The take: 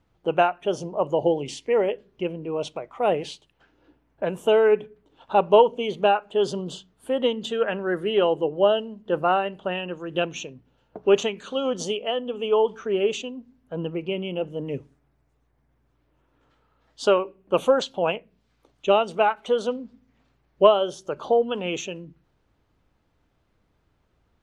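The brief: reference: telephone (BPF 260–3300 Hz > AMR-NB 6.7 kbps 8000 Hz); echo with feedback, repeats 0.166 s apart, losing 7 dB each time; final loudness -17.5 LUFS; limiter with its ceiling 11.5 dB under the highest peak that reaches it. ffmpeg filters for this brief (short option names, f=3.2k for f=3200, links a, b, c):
-af "alimiter=limit=-14dB:level=0:latency=1,highpass=260,lowpass=3.3k,aecho=1:1:166|332|498|664|830:0.447|0.201|0.0905|0.0407|0.0183,volume=10dB" -ar 8000 -c:a libopencore_amrnb -b:a 6700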